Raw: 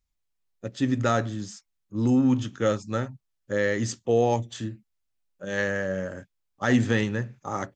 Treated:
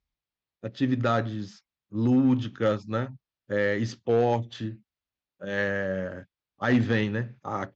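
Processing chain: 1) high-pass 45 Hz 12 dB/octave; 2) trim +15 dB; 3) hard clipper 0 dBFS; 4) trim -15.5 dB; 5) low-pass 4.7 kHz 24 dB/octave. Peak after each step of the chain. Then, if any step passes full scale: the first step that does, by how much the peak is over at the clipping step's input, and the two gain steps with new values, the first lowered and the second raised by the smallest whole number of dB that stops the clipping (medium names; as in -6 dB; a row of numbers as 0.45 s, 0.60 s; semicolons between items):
-10.0 dBFS, +5.0 dBFS, 0.0 dBFS, -15.5 dBFS, -15.0 dBFS; step 2, 5.0 dB; step 2 +10 dB, step 4 -10.5 dB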